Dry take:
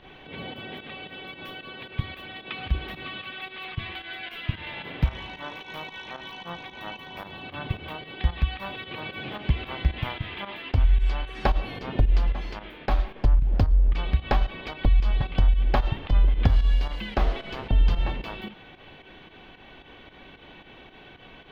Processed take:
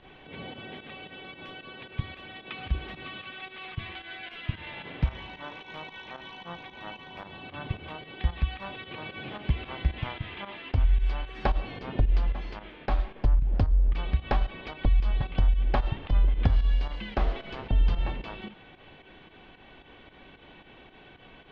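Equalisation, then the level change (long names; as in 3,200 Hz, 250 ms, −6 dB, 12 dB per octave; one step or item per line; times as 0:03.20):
high-frequency loss of the air 91 metres
−3.0 dB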